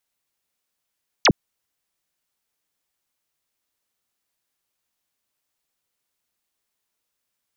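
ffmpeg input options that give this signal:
ffmpeg -f lavfi -i "aevalsrc='0.282*clip(t/0.002,0,1)*clip((0.06-t)/0.002,0,1)*sin(2*PI*7000*0.06/log(110/7000)*(exp(log(110/7000)*t/0.06)-1))':duration=0.06:sample_rate=44100" out.wav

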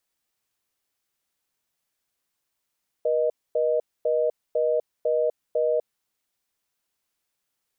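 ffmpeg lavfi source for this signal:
ffmpeg -f lavfi -i "aevalsrc='0.075*(sin(2*PI*480*t)+sin(2*PI*620*t))*clip(min(mod(t,0.5),0.25-mod(t,0.5))/0.005,0,1)':duration=2.98:sample_rate=44100" out.wav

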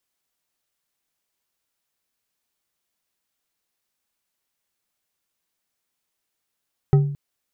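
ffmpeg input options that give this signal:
ffmpeg -f lavfi -i "aevalsrc='0.355*pow(10,-3*t/0.63)*sin(2*PI*143*t)+0.133*pow(10,-3*t/0.31)*sin(2*PI*394.3*t)+0.0501*pow(10,-3*t/0.193)*sin(2*PI*772.8*t)+0.0188*pow(10,-3*t/0.136)*sin(2*PI*1277.4*t)+0.00708*pow(10,-3*t/0.103)*sin(2*PI*1907.6*t)':duration=0.22:sample_rate=44100" out.wav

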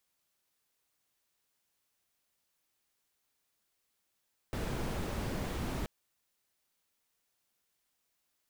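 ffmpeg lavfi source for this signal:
ffmpeg -f lavfi -i "anoisesrc=color=brown:amplitude=0.0785:duration=1.33:sample_rate=44100:seed=1" out.wav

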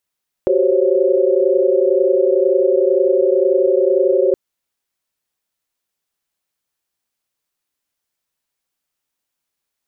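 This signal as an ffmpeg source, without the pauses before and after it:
ffmpeg -f lavfi -i "aevalsrc='0.141*(sin(2*PI*369.99*t)+sin(2*PI*392*t)+sin(2*PI*523.25*t)+sin(2*PI*554.37*t))':duration=3.87:sample_rate=44100" out.wav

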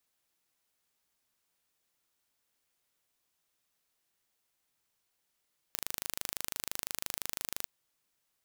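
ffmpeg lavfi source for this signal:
ffmpeg -f lavfi -i "aevalsrc='0.422*eq(mod(n,1703),0)':duration=1.92:sample_rate=44100" out.wav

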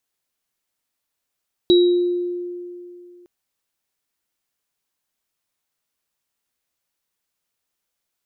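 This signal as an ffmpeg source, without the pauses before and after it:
ffmpeg -f lavfi -i "aevalsrc='0.355*pow(10,-3*t/2.6)*sin(2*PI*353*t)+0.141*pow(10,-3*t/0.67)*sin(2*PI*3870*t)':duration=1.56:sample_rate=44100" out.wav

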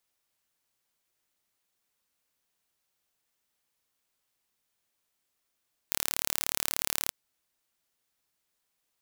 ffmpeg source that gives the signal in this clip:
ffmpeg -f lavfi -i "aevalsrc='0.841*eq(mod(n,1202),0)':duration=1.19:sample_rate=44100" out.wav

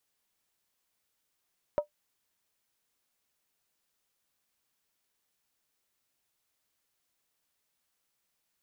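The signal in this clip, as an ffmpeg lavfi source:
ffmpeg -f lavfi -i "aevalsrc='0.112*pow(10,-3*t/0.11)*sin(2*PI*593*t)+0.0299*pow(10,-3*t/0.087)*sin(2*PI*945.2*t)+0.00794*pow(10,-3*t/0.075)*sin(2*PI*1266.6*t)+0.00211*pow(10,-3*t/0.073)*sin(2*PI*1361.5*t)+0.000562*pow(10,-3*t/0.068)*sin(2*PI*1573.2*t)':duration=0.63:sample_rate=44100" out.wav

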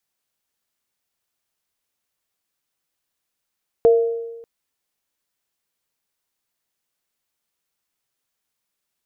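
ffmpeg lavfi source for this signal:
ffmpeg -f lavfi -i "aevalsrc='0.398*pow(10,-3*t/1.17)*sin(2*PI*462*t)+0.1*pow(10,-3*t/0.77)*sin(2*PI*674*t)':duration=0.59:sample_rate=44100" out.wav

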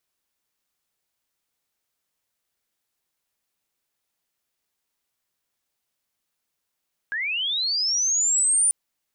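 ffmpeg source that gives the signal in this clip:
ffmpeg -f lavfi -i "aevalsrc='pow(10,(-24.5+8.5*t/1.59)/20)*sin(2*PI*(1600*t+7800*t*t/(2*1.59)))':duration=1.59:sample_rate=44100" out.wav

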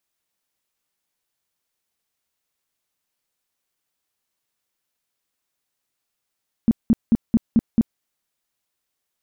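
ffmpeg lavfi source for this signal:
ffmpeg -f lavfi -i "aevalsrc='0.299*sin(2*PI*228*mod(t,0.22))*lt(mod(t,0.22),7/228)':duration=1.32:sample_rate=44100" out.wav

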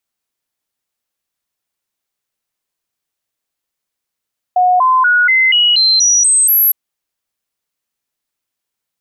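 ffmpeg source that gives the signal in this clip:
ffmpeg -f lavfi -i "aevalsrc='0.422*clip(min(mod(t,0.24),0.24-mod(t,0.24))/0.005,0,1)*sin(2*PI*728*pow(2,floor(t/0.24)/2)*mod(t,0.24))':duration=2.16:sample_rate=44100" out.wav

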